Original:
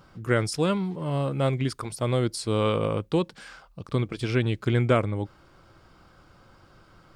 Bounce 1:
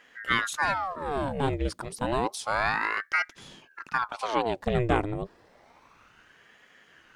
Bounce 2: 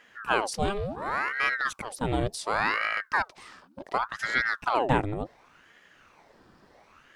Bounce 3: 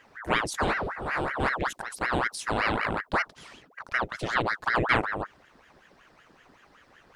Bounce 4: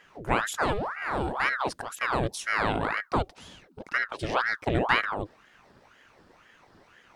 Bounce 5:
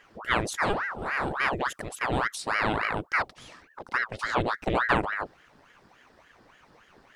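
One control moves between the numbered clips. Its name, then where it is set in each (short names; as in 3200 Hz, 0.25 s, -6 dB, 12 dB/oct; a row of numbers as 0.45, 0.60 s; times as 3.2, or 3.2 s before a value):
ring modulator with a swept carrier, at: 0.3, 0.69, 5.3, 2, 3.5 Hz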